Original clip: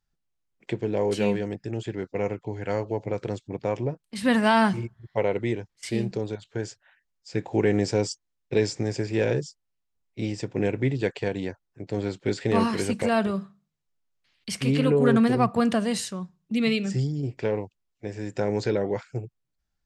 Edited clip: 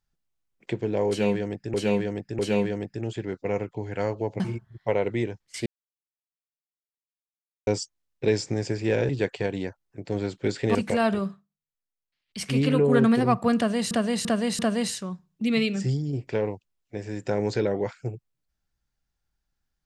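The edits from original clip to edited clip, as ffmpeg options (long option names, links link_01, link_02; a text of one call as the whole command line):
ffmpeg -i in.wav -filter_complex "[0:a]asplit=13[link_01][link_02][link_03][link_04][link_05][link_06][link_07][link_08][link_09][link_10][link_11][link_12][link_13];[link_01]atrim=end=1.742[link_14];[link_02]atrim=start=1.088:end=1.742[link_15];[link_03]atrim=start=1.088:end=3.102[link_16];[link_04]atrim=start=4.688:end=5.95,asetpts=PTS-STARTPTS,afade=type=out:start_time=1.258:duration=0.004:curve=hsin[link_17];[link_05]atrim=start=5.95:end=7.96,asetpts=PTS-STARTPTS,volume=0[link_18];[link_06]atrim=start=7.96:end=9.382,asetpts=PTS-STARTPTS,afade=type=in:duration=0.004:curve=hsin[link_19];[link_07]atrim=start=10.908:end=12.572[link_20];[link_08]atrim=start=12.868:end=13.58,asetpts=PTS-STARTPTS,afade=type=out:start_time=0.532:duration=0.18:silence=0.199526[link_21];[link_09]atrim=start=13.58:end=14.38,asetpts=PTS-STARTPTS,volume=-14dB[link_22];[link_10]atrim=start=14.38:end=16.032,asetpts=PTS-STARTPTS,afade=type=in:duration=0.18:silence=0.199526[link_23];[link_11]atrim=start=15.688:end=16.032[link_24];[link_12]atrim=start=15.688:end=16.032[link_25];[link_13]atrim=start=15.688[link_26];[link_14][link_15]acrossfade=duration=0.004:curve1=hsin:curve2=hsin[link_27];[link_27][link_16]acrossfade=duration=0.004:curve1=hsin:curve2=hsin[link_28];[link_17][link_18][link_19]concat=n=3:v=0:a=1[link_29];[link_28][link_29]acrossfade=duration=0.004:curve1=hsin:curve2=hsin[link_30];[link_30][link_20]acrossfade=duration=0.004:curve1=hsin:curve2=hsin[link_31];[link_21][link_22][link_23]concat=n=3:v=0:a=1[link_32];[link_31][link_32]acrossfade=duration=0.004:curve1=hsin:curve2=hsin[link_33];[link_33][link_24]acrossfade=duration=0.004:curve1=hsin:curve2=hsin[link_34];[link_34][link_25]acrossfade=duration=0.004:curve1=hsin:curve2=hsin[link_35];[link_35][link_26]acrossfade=duration=0.004:curve1=hsin:curve2=hsin" out.wav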